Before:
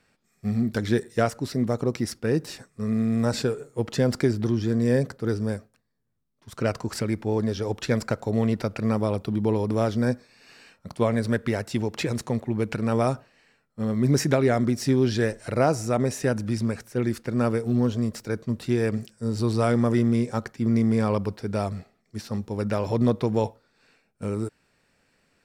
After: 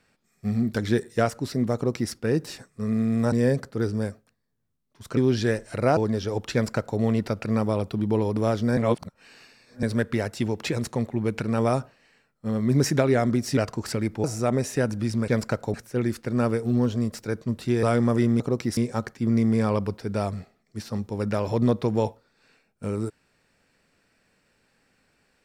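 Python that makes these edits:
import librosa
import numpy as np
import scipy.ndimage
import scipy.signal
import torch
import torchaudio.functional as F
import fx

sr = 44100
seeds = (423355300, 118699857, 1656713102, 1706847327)

y = fx.edit(x, sr, fx.duplicate(start_s=1.75, length_s=0.37, to_s=20.16),
    fx.cut(start_s=3.32, length_s=1.47),
    fx.swap(start_s=6.64, length_s=0.67, other_s=14.91, other_length_s=0.8),
    fx.duplicate(start_s=7.87, length_s=0.46, to_s=16.75),
    fx.reverse_span(start_s=10.11, length_s=1.06),
    fx.cut(start_s=18.84, length_s=0.75), tone=tone)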